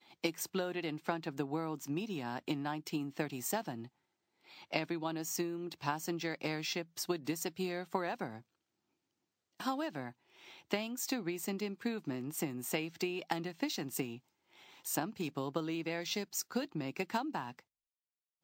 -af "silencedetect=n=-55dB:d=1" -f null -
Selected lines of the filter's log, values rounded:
silence_start: 8.42
silence_end: 9.60 | silence_duration: 1.18